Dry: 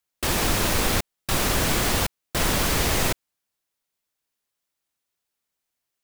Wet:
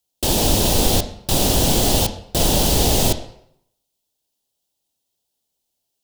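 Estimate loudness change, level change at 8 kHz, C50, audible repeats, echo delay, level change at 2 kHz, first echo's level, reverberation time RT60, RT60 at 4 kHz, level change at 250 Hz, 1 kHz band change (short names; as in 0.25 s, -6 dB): +5.0 dB, +6.0 dB, 12.0 dB, none, none, -5.0 dB, none, 0.70 s, 0.60 s, +6.5 dB, +2.5 dB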